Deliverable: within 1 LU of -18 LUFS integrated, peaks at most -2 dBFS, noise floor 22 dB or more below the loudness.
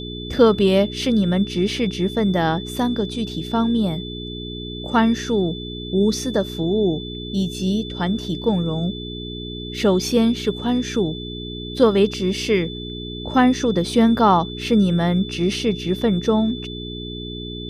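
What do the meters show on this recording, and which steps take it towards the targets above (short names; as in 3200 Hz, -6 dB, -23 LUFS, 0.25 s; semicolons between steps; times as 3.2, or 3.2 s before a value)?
hum 60 Hz; harmonics up to 420 Hz; hum level -30 dBFS; steady tone 3500 Hz; tone level -34 dBFS; loudness -21.0 LUFS; peak -2.5 dBFS; loudness target -18.0 LUFS
-> de-hum 60 Hz, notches 7; notch 3500 Hz, Q 30; gain +3 dB; limiter -2 dBFS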